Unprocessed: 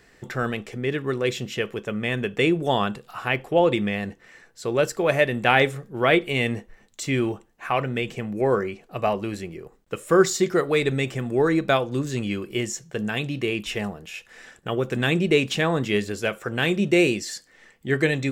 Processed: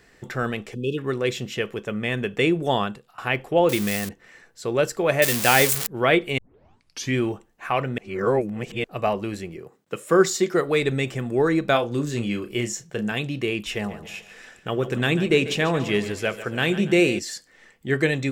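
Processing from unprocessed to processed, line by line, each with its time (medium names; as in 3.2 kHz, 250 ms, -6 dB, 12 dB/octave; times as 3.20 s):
0.75–0.98 s: spectral selection erased 560–2500 Hz
2.76–3.18 s: fade out, to -20.5 dB
3.69–4.09 s: zero-crossing glitches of -17 dBFS
5.22–5.87 s: zero-crossing glitches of -10 dBFS
6.38 s: tape start 0.77 s
7.98–8.84 s: reverse
9.56–10.53 s: high-pass 79 Hz -> 200 Hz 24 dB/octave
11.71–13.12 s: doubling 34 ms -9 dB
13.74–17.19 s: two-band feedback delay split 430 Hz, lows 90 ms, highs 143 ms, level -13 dB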